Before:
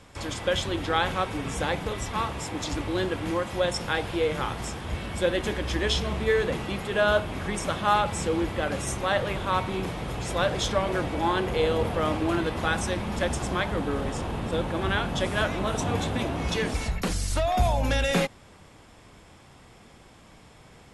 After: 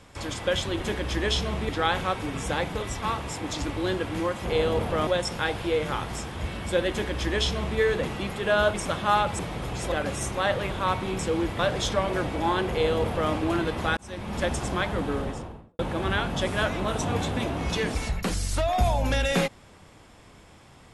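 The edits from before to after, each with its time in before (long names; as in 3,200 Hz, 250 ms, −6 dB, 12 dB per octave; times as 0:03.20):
0:05.39–0:06.28: duplicate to 0:00.80
0:07.23–0:07.53: remove
0:08.18–0:08.58: swap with 0:09.85–0:10.38
0:11.49–0:12.11: duplicate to 0:03.56
0:12.76–0:13.19: fade in linear
0:13.90–0:14.58: fade out and dull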